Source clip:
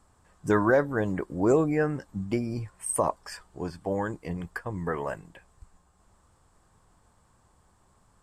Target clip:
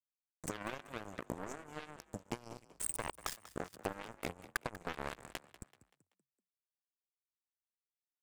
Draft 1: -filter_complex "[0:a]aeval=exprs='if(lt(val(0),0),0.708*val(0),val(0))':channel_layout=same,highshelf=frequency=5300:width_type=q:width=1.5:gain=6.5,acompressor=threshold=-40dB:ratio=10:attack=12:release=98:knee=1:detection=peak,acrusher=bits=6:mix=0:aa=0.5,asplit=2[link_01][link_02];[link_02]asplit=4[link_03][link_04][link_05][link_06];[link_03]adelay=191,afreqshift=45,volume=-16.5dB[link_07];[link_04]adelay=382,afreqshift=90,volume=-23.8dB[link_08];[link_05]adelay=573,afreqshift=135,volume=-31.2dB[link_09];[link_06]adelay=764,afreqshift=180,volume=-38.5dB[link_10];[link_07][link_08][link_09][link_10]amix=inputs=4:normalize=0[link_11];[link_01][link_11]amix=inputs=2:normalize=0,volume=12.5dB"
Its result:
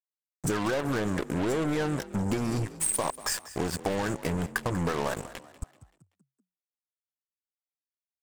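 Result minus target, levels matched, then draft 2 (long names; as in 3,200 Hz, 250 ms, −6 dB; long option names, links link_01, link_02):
downward compressor: peak gain reduction −9 dB
-filter_complex "[0:a]aeval=exprs='if(lt(val(0),0),0.708*val(0),val(0))':channel_layout=same,highshelf=frequency=5300:width_type=q:width=1.5:gain=6.5,acompressor=threshold=-50dB:ratio=10:attack=12:release=98:knee=1:detection=peak,acrusher=bits=6:mix=0:aa=0.5,asplit=2[link_01][link_02];[link_02]asplit=4[link_03][link_04][link_05][link_06];[link_03]adelay=191,afreqshift=45,volume=-16.5dB[link_07];[link_04]adelay=382,afreqshift=90,volume=-23.8dB[link_08];[link_05]adelay=573,afreqshift=135,volume=-31.2dB[link_09];[link_06]adelay=764,afreqshift=180,volume=-38.5dB[link_10];[link_07][link_08][link_09][link_10]amix=inputs=4:normalize=0[link_11];[link_01][link_11]amix=inputs=2:normalize=0,volume=12.5dB"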